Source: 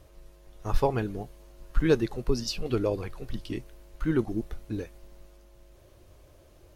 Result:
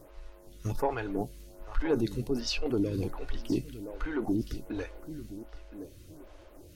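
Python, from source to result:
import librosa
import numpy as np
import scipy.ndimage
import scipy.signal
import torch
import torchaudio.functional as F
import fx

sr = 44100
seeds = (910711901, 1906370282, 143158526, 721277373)

p1 = fx.over_compress(x, sr, threshold_db=-32.0, ratio=-1.0)
p2 = x + F.gain(torch.from_numpy(p1), 1.5).numpy()
p3 = fx.dmg_crackle(p2, sr, seeds[0], per_s=19.0, level_db=-42.0)
p4 = fx.comb_fb(p3, sr, f0_hz=290.0, decay_s=0.15, harmonics='odd', damping=0.0, mix_pct=60)
p5 = 10.0 ** (-20.5 / 20.0) * np.tanh(p4 / 10.0 ** (-20.5 / 20.0))
p6 = p5 + fx.echo_feedback(p5, sr, ms=1019, feedback_pct=27, wet_db=-14, dry=0)
p7 = fx.stagger_phaser(p6, sr, hz=1.3)
y = F.gain(torch.from_numpy(p7), 4.0).numpy()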